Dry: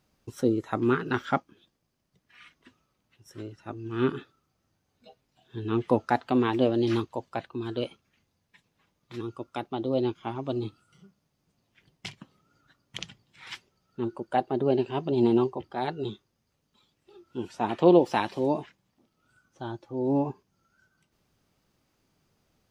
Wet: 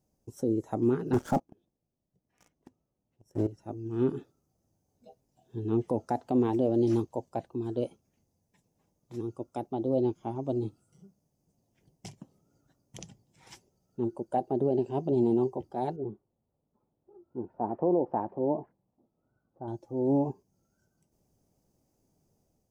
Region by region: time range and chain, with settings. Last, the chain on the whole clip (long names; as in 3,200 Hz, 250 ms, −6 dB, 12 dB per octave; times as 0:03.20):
0:01.13–0:03.47: high-shelf EQ 2,600 Hz −10 dB + leveller curve on the samples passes 3
0:15.96–0:19.68: low-pass filter 1,400 Hz 24 dB per octave + low-shelf EQ 410 Hz −4.5 dB
whole clip: flat-topped bell 2,200 Hz −15.5 dB 2.3 octaves; brickwall limiter −17 dBFS; automatic gain control gain up to 4.5 dB; level −4.5 dB